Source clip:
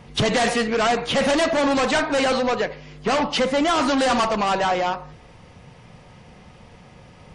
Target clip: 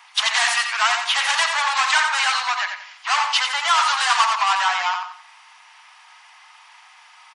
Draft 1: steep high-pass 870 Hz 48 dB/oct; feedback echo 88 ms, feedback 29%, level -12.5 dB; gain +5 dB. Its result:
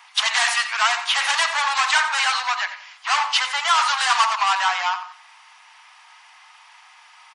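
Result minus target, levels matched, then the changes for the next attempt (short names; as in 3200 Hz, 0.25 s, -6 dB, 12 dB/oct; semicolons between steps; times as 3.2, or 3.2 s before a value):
echo-to-direct -6 dB
change: feedback echo 88 ms, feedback 29%, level -6.5 dB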